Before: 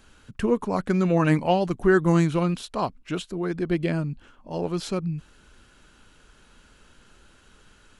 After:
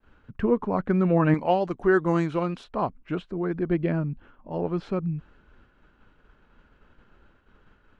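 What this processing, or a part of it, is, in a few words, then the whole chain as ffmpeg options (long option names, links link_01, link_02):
hearing-loss simulation: -filter_complex "[0:a]lowpass=1800,agate=range=-33dB:threshold=-51dB:ratio=3:detection=peak,asettb=1/sr,asplit=3[link_01][link_02][link_03];[link_01]atrim=end=1.344[link_04];[link_02]atrim=start=1.34:end=2.64,asetpts=PTS-STARTPTS,afade=type=in:duration=0.004:curve=qsin,afade=type=out:start_time=1.296:duration=0.004:curve=qsin,bass=frequency=250:gain=-8,treble=frequency=4000:gain=13[link_05];[link_03]atrim=start=2.636[link_06];[link_04][link_05]acrossfade=duration=0.004:curve1=hsin:curve2=qsin[link_07];[link_07][link_06]acrossfade=duration=0.004:curve1=qsin:curve2=hsin"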